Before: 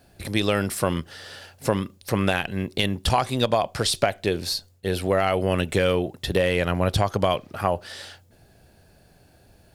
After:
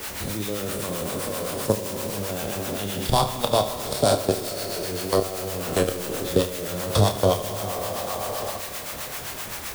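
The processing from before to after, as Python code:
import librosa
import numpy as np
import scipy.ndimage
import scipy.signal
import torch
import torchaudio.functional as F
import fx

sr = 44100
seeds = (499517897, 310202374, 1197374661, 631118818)

y = fx.spec_trails(x, sr, decay_s=2.07)
y = fx.peak_eq(y, sr, hz=2100.0, db=-13.5, octaves=1.2)
y = fx.echo_thinned(y, sr, ms=445, feedback_pct=33, hz=350.0, wet_db=-6.5)
y = fx.level_steps(y, sr, step_db=18)
y = fx.dmg_noise_colour(y, sr, seeds[0], colour='white', level_db=-39.0)
y = fx.harmonic_tremolo(y, sr, hz=7.7, depth_pct=70, crossover_hz=670.0)
y = fx.room_early_taps(y, sr, ms=(29, 74), db=(-8.5, -15.0))
y = fx.rev_schroeder(y, sr, rt60_s=2.7, comb_ms=29, drr_db=15.0)
y = fx.band_squash(y, sr, depth_pct=40)
y = F.gain(torch.from_numpy(y), 5.0).numpy()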